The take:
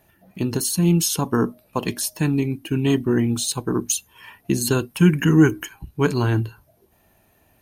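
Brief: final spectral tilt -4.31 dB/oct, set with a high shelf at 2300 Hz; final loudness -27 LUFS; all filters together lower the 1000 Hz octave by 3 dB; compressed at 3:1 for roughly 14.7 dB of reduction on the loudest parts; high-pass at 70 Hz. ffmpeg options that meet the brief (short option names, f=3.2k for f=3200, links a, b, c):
-af "highpass=70,equalizer=f=1k:t=o:g=-4.5,highshelf=f=2.3k:g=3.5,acompressor=threshold=-30dB:ratio=3,volume=4dB"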